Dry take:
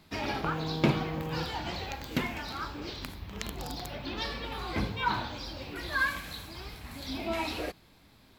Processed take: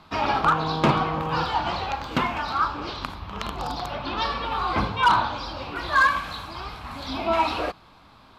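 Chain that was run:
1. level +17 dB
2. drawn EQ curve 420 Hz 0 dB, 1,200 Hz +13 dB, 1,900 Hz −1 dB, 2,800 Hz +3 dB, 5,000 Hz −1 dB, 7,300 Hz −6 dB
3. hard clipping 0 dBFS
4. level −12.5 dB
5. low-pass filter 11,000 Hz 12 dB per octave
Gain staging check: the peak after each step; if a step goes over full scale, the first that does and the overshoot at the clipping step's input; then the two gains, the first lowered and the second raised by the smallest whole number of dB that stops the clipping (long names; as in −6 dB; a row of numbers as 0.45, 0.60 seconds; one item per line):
+5.5, +9.5, 0.0, −12.5, −12.0 dBFS
step 1, 9.5 dB
step 1 +7 dB, step 4 −2.5 dB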